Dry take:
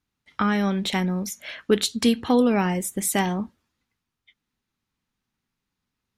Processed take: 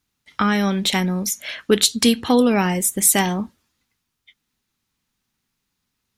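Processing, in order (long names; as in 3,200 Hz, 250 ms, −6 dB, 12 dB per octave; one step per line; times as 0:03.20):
high-shelf EQ 3,400 Hz +8.5 dB
level +3 dB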